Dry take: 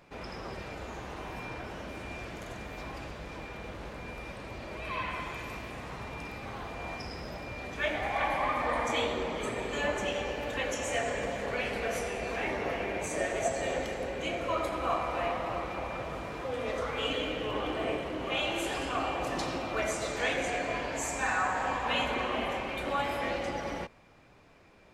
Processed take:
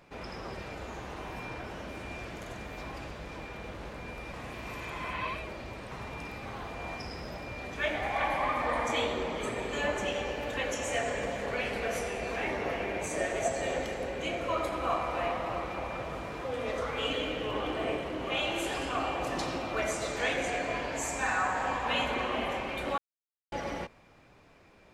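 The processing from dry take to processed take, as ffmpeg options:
ffmpeg -i in.wav -filter_complex "[0:a]asplit=5[link_01][link_02][link_03][link_04][link_05];[link_01]atrim=end=4.332[link_06];[link_02]atrim=start=4.328:end=5.912,asetpts=PTS-STARTPTS,areverse[link_07];[link_03]atrim=start=5.908:end=22.98,asetpts=PTS-STARTPTS,afade=type=out:start_time=17.068:duration=0.004:curve=hsin[link_08];[link_04]atrim=start=22.98:end=23.52,asetpts=PTS-STARTPTS,volume=0[link_09];[link_05]atrim=start=23.52,asetpts=PTS-STARTPTS,afade=type=in:duration=0.004:curve=hsin[link_10];[link_06][link_07]acrossfade=duration=0.004:curve1=hsin:curve2=hsin[link_11];[link_08][link_09][link_10]concat=n=3:v=0:a=1[link_12];[link_11][link_12]acrossfade=duration=0.004:curve1=hsin:curve2=hsin" out.wav

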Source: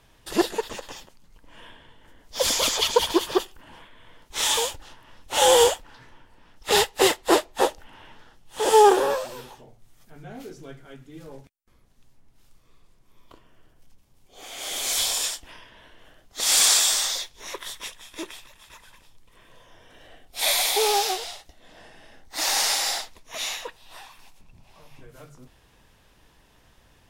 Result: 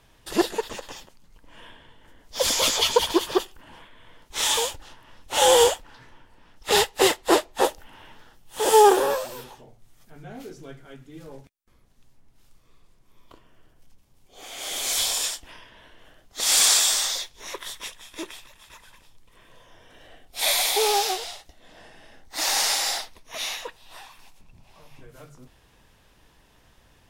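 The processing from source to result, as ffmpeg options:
ffmpeg -i in.wav -filter_complex "[0:a]asettb=1/sr,asplit=3[link_01][link_02][link_03];[link_01]atrim=end=2.564[link_04];[link_02]atrim=start=2.56:end=2.97,asetpts=PTS-STARTPTS,afade=type=in:duration=0.004:curve=qsin,afade=type=out:start_time=0.406:duration=0.004:curve=qsin,asplit=2[link_05][link_06];[link_06]adelay=15,volume=-5dB[link_07];[link_05][link_07]amix=inputs=2:normalize=0,atrim=end_sample=18081[link_08];[link_03]atrim=start=2.966[link_09];[link_04][link_08]acrossfade=duration=0.004:curve1=hsin:curve2=qsin[link_10];[link_10][link_09]acrossfade=duration=0.004:curve1=qsin:curve2=hsin,asettb=1/sr,asplit=3[link_11][link_12][link_13];[link_11]atrim=end=7.644[link_14];[link_12]atrim=start=7.64:end=9.44,asetpts=PTS-STARTPTS,afade=type=in:duration=0.004:curve=qsin,afade=type=out:start_time=1.796:duration=0.004:curve=qsin,highshelf=frequency=12000:gain=11.5[link_15];[link_13]atrim=start=9.436[link_16];[link_14][link_15]acrossfade=duration=0.004:curve1=hsin:curve2=qsin[link_17];[link_17][link_16]acrossfade=duration=0.004:curve1=qsin:curve2=hsin,asettb=1/sr,asplit=3[link_18][link_19][link_20];[link_18]atrim=end=22.974[link_21];[link_19]atrim=start=22.97:end=23.59,asetpts=PTS-STARTPTS,afade=type=in:duration=0.004:curve=qsin,afade=type=out:start_time=0.616:duration=0.004:curve=qsin,bandreject=frequency=7200:width=7.3[link_22];[link_20]atrim=start=23.586[link_23];[link_21][link_22]acrossfade=duration=0.004:curve1=hsin:curve2=qsin[link_24];[link_24][link_23]acrossfade=duration=0.004:curve1=qsin:curve2=hsin" out.wav

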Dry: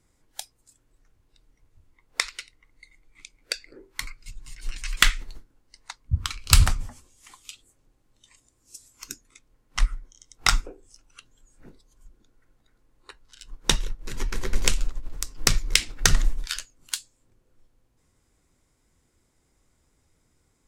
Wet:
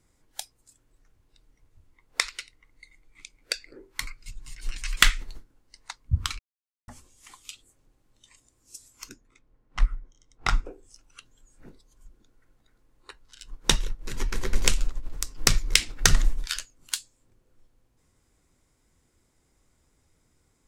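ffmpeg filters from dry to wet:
ffmpeg -i in.wav -filter_complex "[0:a]asettb=1/sr,asplit=3[link_01][link_02][link_03];[link_01]atrim=end=9.094[link_04];[link_02]atrim=start=9.09:end=10.66,asetpts=PTS-STARTPTS,afade=type=in:duration=0.004:curve=qsin,afade=type=out:start_time=1.566:duration=0.004:curve=qsin,lowpass=frequency=1300:poles=1[link_05];[link_03]atrim=start=10.656[link_06];[link_04][link_05]acrossfade=duration=0.004:curve1=hsin:curve2=qsin[link_07];[link_07][link_06]acrossfade=duration=0.004:curve1=qsin:curve2=hsin,asplit=3[link_08][link_09][link_10];[link_08]atrim=end=6.39,asetpts=PTS-STARTPTS,afade=type=out:start_time=6.386:duration=0.004:curve=hsin[link_11];[link_09]atrim=start=6.39:end=6.88,asetpts=PTS-STARTPTS,volume=0[link_12];[link_10]atrim=start=6.88,asetpts=PTS-STARTPTS,afade=type=in:duration=0.004:curve=hsin[link_13];[link_11][link_12][link_13]concat=n=3:v=0:a=1" out.wav

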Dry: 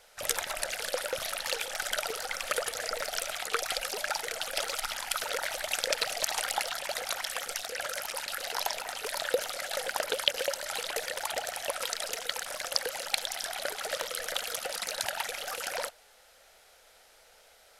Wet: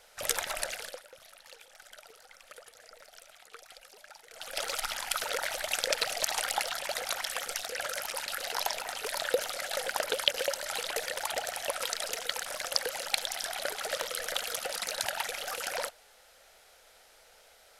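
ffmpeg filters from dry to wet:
ffmpeg -i in.wav -filter_complex "[0:a]asplit=3[link_01][link_02][link_03];[link_01]atrim=end=1.02,asetpts=PTS-STARTPTS,afade=type=out:start_time=0.6:duration=0.42:silence=0.105925[link_04];[link_02]atrim=start=1.02:end=4.29,asetpts=PTS-STARTPTS,volume=-19.5dB[link_05];[link_03]atrim=start=4.29,asetpts=PTS-STARTPTS,afade=type=in:duration=0.42:silence=0.105925[link_06];[link_04][link_05][link_06]concat=n=3:v=0:a=1" out.wav

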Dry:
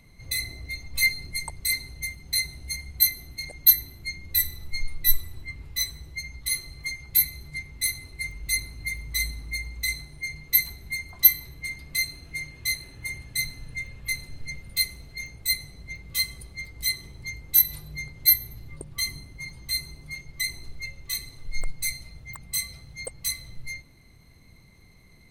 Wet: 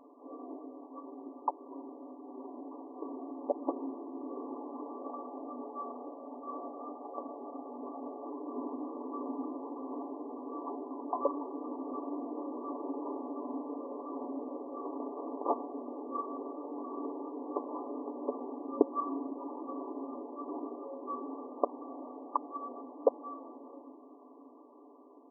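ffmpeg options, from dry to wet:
ffmpeg -i in.wav -filter_complex "[0:a]asettb=1/sr,asplit=3[link_01][link_02][link_03];[link_01]atrim=end=5.014[link_04];[link_02]atrim=start=5.01:end=8.26,asetpts=PTS-STARTPTS,afade=type=in:duration=0.004:curve=qsin,afade=type=out:start_time=3.246:duration=0.004:curve=qsin,aecho=1:1:1.5:0.47,atrim=end_sample=143325[link_05];[link_03]atrim=start=8.256[link_06];[link_04][link_05]acrossfade=duration=0.004:curve1=hsin:curve2=qsin[link_07];[link_07][link_06]acrossfade=duration=0.004:curve1=qsin:curve2=hsin,asettb=1/sr,asplit=3[link_08][link_09][link_10];[link_08]atrim=end=14.854[link_11];[link_09]atrim=start=14.85:end=15.63,asetpts=PTS-STARTPTS,afade=type=in:duration=0.004:curve=qsin,afade=type=out:start_time=0.776:duration=0.004:curve=qsin,acrusher=bits=2:mode=log:mix=0:aa=0.000001[link_12];[link_10]atrim=start=15.626[link_13];[link_11][link_12]acrossfade=duration=0.004:curve1=hsin:curve2=qsin[link_14];[link_14][link_13]acrossfade=duration=0.004:curve1=qsin:curve2=hsin,afftfilt=real='re*between(b*sr/4096,240,1200)':imag='im*between(b*sr/4096,240,1200)':win_size=4096:overlap=0.75,aecho=1:1:7:0.47,dynaudnorm=framelen=680:gausssize=9:maxgain=9dB,volume=8.5dB" out.wav

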